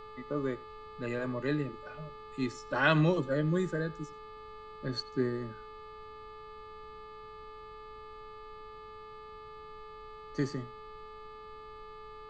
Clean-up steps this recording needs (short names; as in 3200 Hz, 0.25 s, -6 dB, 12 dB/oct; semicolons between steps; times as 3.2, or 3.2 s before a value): de-hum 431.6 Hz, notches 11; notch 1200 Hz, Q 30; noise print and reduce 30 dB; inverse comb 88 ms -22 dB